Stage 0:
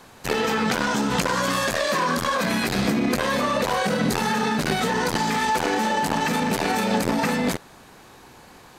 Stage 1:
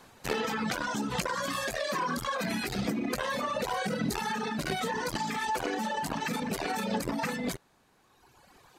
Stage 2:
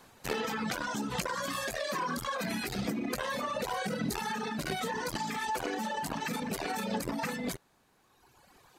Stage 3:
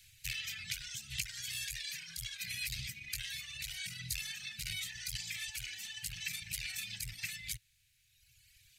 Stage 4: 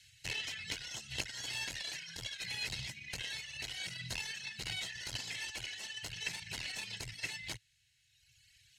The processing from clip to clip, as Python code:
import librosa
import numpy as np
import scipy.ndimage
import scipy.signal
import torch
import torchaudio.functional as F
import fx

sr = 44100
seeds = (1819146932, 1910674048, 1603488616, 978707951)

y1 = fx.dereverb_blind(x, sr, rt60_s=1.9)
y1 = y1 * librosa.db_to_amplitude(-6.5)
y2 = fx.high_shelf(y1, sr, hz=11000.0, db=5.0)
y2 = y2 * librosa.db_to_amplitude(-2.5)
y3 = scipy.signal.sosfilt(scipy.signal.ellip(3, 1.0, 40, [110.0, 2300.0], 'bandstop', fs=sr, output='sos'), y2)
y3 = fx.rider(y3, sr, range_db=10, speed_s=2.0)
y3 = y3 * librosa.db_to_amplitude(1.5)
y4 = fx.tracing_dist(y3, sr, depth_ms=0.12)
y4 = scipy.signal.sosfilt(scipy.signal.butter(2, 7800.0, 'lowpass', fs=sr, output='sos'), y4)
y4 = fx.notch_comb(y4, sr, f0_hz=1200.0)
y4 = y4 * librosa.db_to_amplitude(2.5)